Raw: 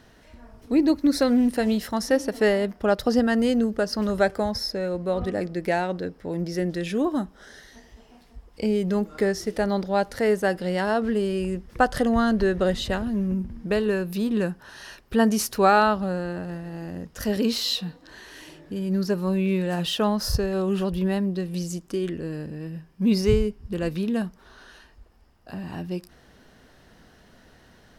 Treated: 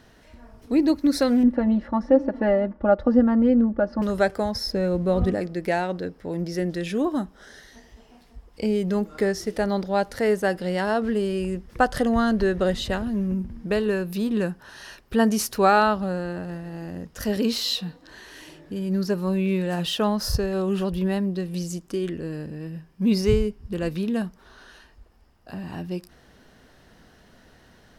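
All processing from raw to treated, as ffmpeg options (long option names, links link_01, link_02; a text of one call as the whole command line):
ffmpeg -i in.wav -filter_complex "[0:a]asettb=1/sr,asplit=3[link_01][link_02][link_03];[link_01]atrim=end=1.434[link_04];[link_02]atrim=start=1.43:end=4.02,asetpts=PTS-STARTPTS,afade=type=in:duration=0.004:curve=qsin,afade=type=out:start_time=2.586:duration=0.004:curve=qsin,lowpass=1200,aecho=1:1:3.5:0.85,atrim=end_sample=114219[link_05];[link_03]atrim=start=4.016[link_06];[link_04][link_05]acrossfade=duration=0.004:curve1=hsin:curve2=qsin[link_07];[link_07][link_06]acrossfade=duration=0.004:curve1=qsin:curve2=hsin,asettb=1/sr,asplit=3[link_08][link_09][link_10];[link_08]atrim=end=4.664[link_11];[link_09]atrim=start=4.66:end=5.35,asetpts=PTS-STARTPTS,afade=type=in:duration=0.004:curve=qsin,afade=type=out:start_time=0.686:duration=0.004:curve=qsin,lowshelf=frequency=310:gain=10,aeval=exprs='sgn(val(0))*max(abs(val(0))-0.00178,0)':channel_layout=same[link_12];[link_10]atrim=start=5.346[link_13];[link_11][link_12]acrossfade=duration=0.004:curve1=hsin:curve2=qsin[link_14];[link_14][link_13]acrossfade=duration=0.004:curve1=qsin:curve2=hsin" out.wav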